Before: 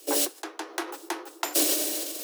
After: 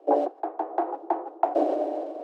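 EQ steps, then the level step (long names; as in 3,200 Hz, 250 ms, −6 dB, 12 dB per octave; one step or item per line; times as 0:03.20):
low-pass with resonance 730 Hz, resonance Q 4.9
+1.5 dB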